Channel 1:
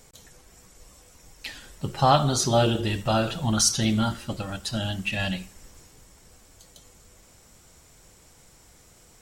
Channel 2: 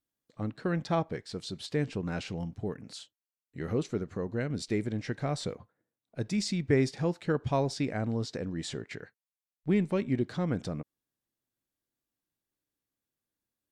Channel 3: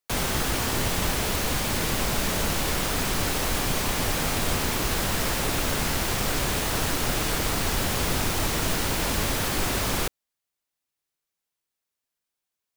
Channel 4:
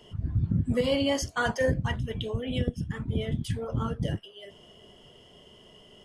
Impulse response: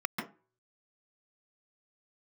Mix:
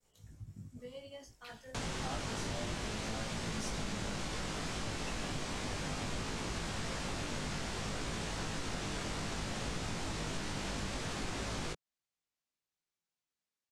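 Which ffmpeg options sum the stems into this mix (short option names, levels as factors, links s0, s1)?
-filter_complex "[0:a]agate=range=0.0224:threshold=0.00316:ratio=3:detection=peak,volume=0.2[s0];[2:a]lowpass=f=8200:w=0.5412,lowpass=f=8200:w=1.3066,equalizer=f=180:w=1.5:g=4.5,adelay=1650,volume=0.708[s1];[3:a]tremolo=f=11:d=0.43,adelay=50,volume=0.112[s2];[s0][s1][s2]amix=inputs=3:normalize=0,flanger=delay=18:depth=2.3:speed=0.61,acompressor=threshold=0.00891:ratio=2"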